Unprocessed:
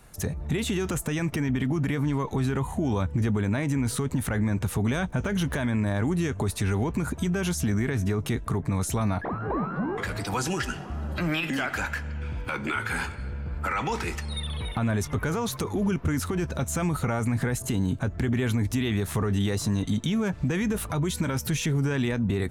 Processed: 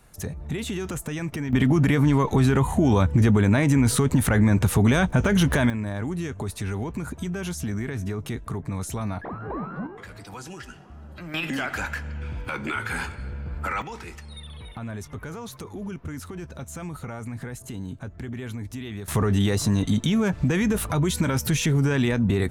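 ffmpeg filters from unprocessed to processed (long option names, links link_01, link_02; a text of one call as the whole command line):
ffmpeg -i in.wav -af "asetnsamples=nb_out_samples=441:pad=0,asendcmd='1.53 volume volume 7dB;5.7 volume volume -3.5dB;9.87 volume volume -11dB;11.34 volume volume 0dB;13.82 volume volume -8.5dB;19.08 volume volume 4dB',volume=-2.5dB" out.wav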